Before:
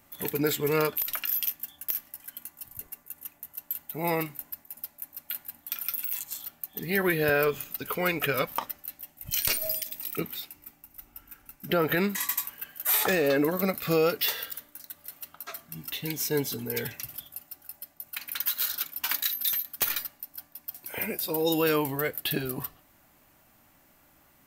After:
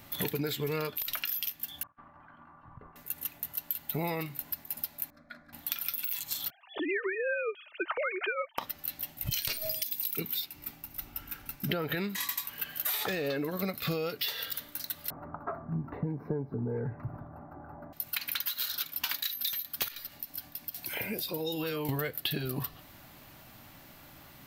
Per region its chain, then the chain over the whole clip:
1.83–2.96 negative-ratio compressor -41 dBFS, ratio -0.5 + ladder low-pass 1300 Hz, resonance 65% + doubler 50 ms -12 dB
5.1–5.53 tape spacing loss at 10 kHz 40 dB + fixed phaser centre 580 Hz, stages 8
6.5–8.58 sine-wave speech + comb 3.3 ms, depth 32%
9.82–10.46 high shelf 4700 Hz +11 dB + notch comb 630 Hz
15.1–17.93 inverse Chebyshev low-pass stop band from 3000 Hz, stop band 50 dB + three-band squash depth 40%
19.88–21.89 compressor 4:1, threshold -40 dBFS + bands offset in time highs, lows 30 ms, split 1100 Hz
whole clip: graphic EQ 125/4000/8000 Hz +6/+7/-5 dB; compressor 12:1, threshold -37 dBFS; gain +7.5 dB

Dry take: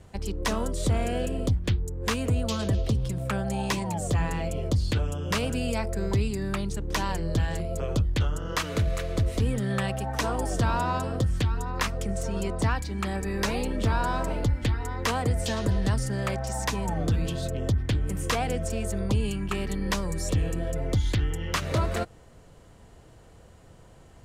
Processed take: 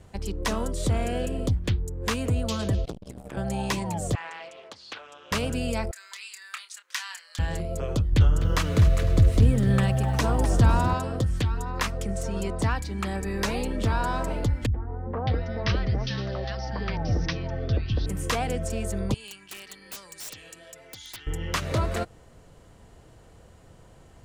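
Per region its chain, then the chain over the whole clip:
2.85–3.37 HPF 180 Hz 6 dB/oct + ring modulator 59 Hz + core saturation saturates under 610 Hz
4.15–5.32 HPF 1000 Hz + air absorption 130 m + Doppler distortion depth 0.47 ms
5.91–7.39 HPF 1400 Hz 24 dB/oct + bell 12000 Hz -5 dB 0.26 oct + doubler 28 ms -9.5 dB
8.12–10.94 low shelf 250 Hz +8.5 dB + lo-fi delay 0.252 s, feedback 35%, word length 8-bit, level -12 dB
14.66–18.06 steep low-pass 5800 Hz 96 dB/oct + notch 1000 Hz, Q 13 + three bands offset in time lows, mids, highs 80/610 ms, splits 240/1100 Hz
19.14–21.27 band-pass 5100 Hz, Q 0.63 + wrapped overs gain 31.5 dB
whole clip: dry

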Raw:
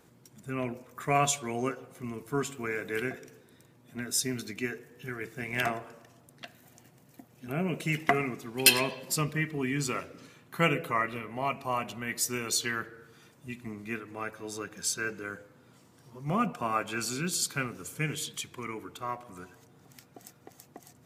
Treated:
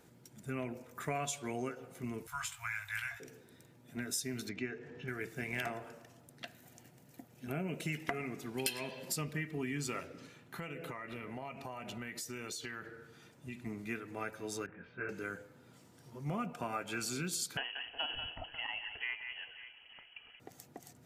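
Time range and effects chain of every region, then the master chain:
2.27–3.2 inverse Chebyshev band-stop 190–480 Hz, stop band 50 dB + doubler 19 ms -5.5 dB
4.49–5.08 upward compressor, threshold -39 dBFS + air absorption 170 m
10.07–13.66 high shelf 8600 Hz -6 dB + compressor 12:1, threshold -37 dBFS
14.66–15.09 steep low-pass 2400 Hz + detuned doubles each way 21 cents
17.57–20.4 echo with dull and thin repeats by turns 0.181 s, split 2200 Hz, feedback 64%, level -10 dB + inverted band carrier 3100 Hz
whole clip: notch 1100 Hz, Q 8.2; compressor 5:1, threshold -33 dBFS; gain -1.5 dB

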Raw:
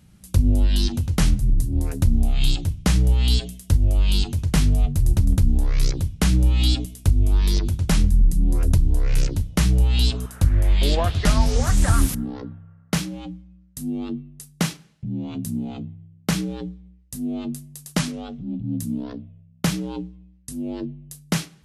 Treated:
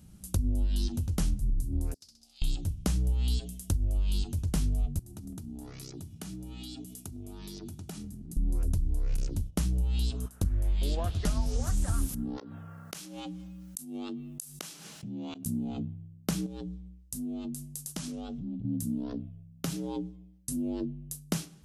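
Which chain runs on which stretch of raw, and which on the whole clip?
1.94–2.42 band-pass 4900 Hz, Q 7.4 + flutter echo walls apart 11.1 m, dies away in 0.64 s
4.99–8.37 HPF 140 Hz + compressor 5:1, threshold -38 dBFS + notch comb 530 Hz
9.16–10.46 gate -33 dBFS, range -11 dB + core saturation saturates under 89 Hz
12.37–15.46 HPF 940 Hz 6 dB/oct + flipped gate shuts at -29 dBFS, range -27 dB + fast leveller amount 70%
16.46–18.65 bell 6000 Hz +3 dB 2 oct + compressor 4:1, threshold -34 dBFS
19.19–20.57 compressor 2.5:1, threshold -29 dBFS + comb 7.4 ms, depth 59%
whole clip: graphic EQ 125/500/1000/2000/4000 Hz -4/-3/-4/-9/-4 dB; compressor 2.5:1, threshold -32 dBFS; gain +1.5 dB

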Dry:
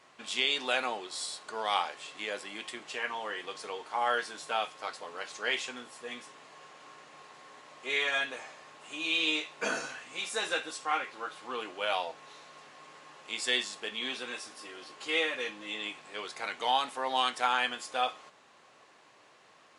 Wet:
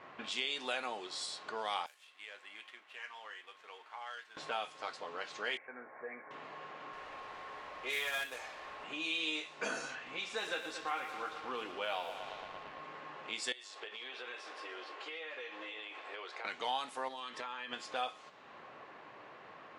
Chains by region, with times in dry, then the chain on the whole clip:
1.86–4.37 median filter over 9 samples + differentiator + tremolo 1.5 Hz, depth 29%
5.57–6.31 rippled Chebyshev low-pass 2300 Hz, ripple 6 dB + low shelf 260 Hz -8.5 dB
6.93–8.84 HPF 380 Hz + companded quantiser 4-bit
9.95–12.81 air absorption 57 m + lo-fi delay 0.113 s, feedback 80%, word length 8-bit, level -11 dB
13.52–16.45 HPF 380 Hz 24 dB/oct + compressor 8:1, threshold -42 dBFS + echo 0.295 s -15.5 dB
17.08–17.73 notch comb 740 Hz + compressor 12:1, threshold -37 dBFS
whole clip: low-pass opened by the level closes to 2000 Hz, open at -29.5 dBFS; compressor 2:1, threshold -55 dBFS; gain +8 dB

